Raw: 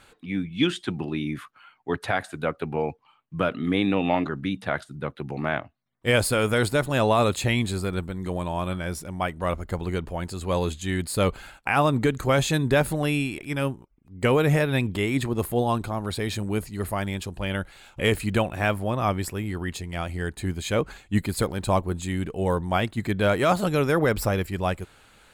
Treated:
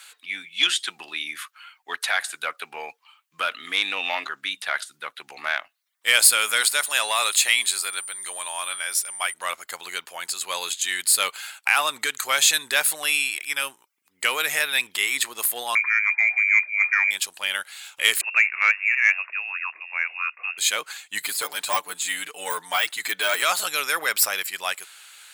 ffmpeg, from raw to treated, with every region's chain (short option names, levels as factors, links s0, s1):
-filter_complex "[0:a]asettb=1/sr,asplit=3[s0][s1][s2];[s0]atrim=end=6.614[s3];[s1]atrim=start=6.61:end=9.34,asetpts=PTS-STARTPTS,afade=t=in:d=0.004:c=qsin,afade=t=out:st=2.726:d=0.004:c=qsin,aeval=exprs='val(0)+0.00398*sin(2*PI*9100*n/s)':c=same,highpass=f=410:p=1[s4];[s2]atrim=start=9.336[s5];[s3][s4]acrossfade=d=0.004:c1=hsin:c2=qsin[s6];[s6][s5]acrossfade=d=0.004:c1=qsin:c2=hsin,asettb=1/sr,asplit=3[s7][s8][s9];[s7]atrim=end=15.754[s10];[s8]atrim=start=15.75:end=17.11,asetpts=PTS-STARTPTS,afade=t=in:d=0.004:c=qsin,afade=t=out:st=1.356:d=0.004:c=qsin,highpass=53,lowpass=f=2100:t=q:w=0.5098,lowpass=f=2100:t=q:w=0.6013,lowpass=f=2100:t=q:w=0.9,lowpass=f=2100:t=q:w=2.563,afreqshift=-2500[s11];[s9]atrim=start=17.106[s12];[s10][s11]acrossfade=d=0.004:c1=hsin:c2=qsin[s13];[s13][s12]acrossfade=d=0.004:c1=qsin:c2=hsin,asettb=1/sr,asplit=3[s14][s15][s16];[s14]atrim=end=18.214[s17];[s15]atrim=start=18.21:end=20.58,asetpts=PTS-STARTPTS,afade=t=in:d=0.004:c=qsin,afade=t=out:st=2.366:d=0.004:c=qsin,highpass=440,lowpass=f=2500:t=q:w=0.5098,lowpass=f=2500:t=q:w=0.6013,lowpass=f=2500:t=q:w=0.9,lowpass=f=2500:t=q:w=2.563,afreqshift=-2900[s18];[s16]atrim=start=20.576[s19];[s17][s18]acrossfade=d=0.004:c1=hsin:c2=qsin[s20];[s20][s19]acrossfade=d=0.004:c1=qsin:c2=hsin,asettb=1/sr,asplit=3[s21][s22][s23];[s21]atrim=end=21.204[s24];[s22]atrim=start=21.2:end=23.42,asetpts=PTS-STARTPTS,afade=t=in:d=0.004:c=qsin,afade=t=out:st=2.216:d=0.004:c=qsin,highpass=110,deesser=0.85,aecho=1:1:6.8:0.98,atrim=end_sample=97902[s25];[s23]atrim=start=23.416[s26];[s24][s25]acrossfade=d=0.004:c1=hsin:c2=qsin[s27];[s27][s26]acrossfade=d=0.004:c1=qsin:c2=hsin,highshelf=f=3800:g=9.5,acontrast=81,highpass=1500"